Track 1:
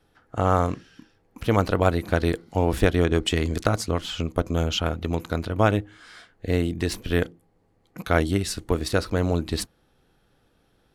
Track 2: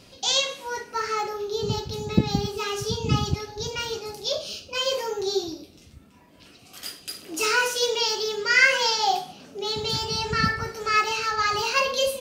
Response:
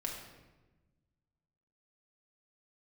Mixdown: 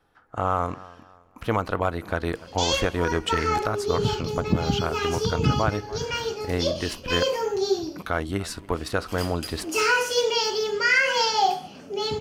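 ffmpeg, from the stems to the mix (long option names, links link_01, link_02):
-filter_complex "[0:a]equalizer=frequency=1100:width=0.84:gain=9,volume=-5dB,asplit=2[link_01][link_02];[link_02]volume=-24dB[link_03];[1:a]highshelf=frequency=4500:gain=-7,bandreject=frequency=3800:width=7.3,adelay=2350,volume=3dB[link_04];[link_03]aecho=0:1:288|576|864|1152|1440:1|0.36|0.13|0.0467|0.0168[link_05];[link_01][link_04][link_05]amix=inputs=3:normalize=0,asoftclip=type=tanh:threshold=-4dB,alimiter=limit=-11dB:level=0:latency=1:release=197"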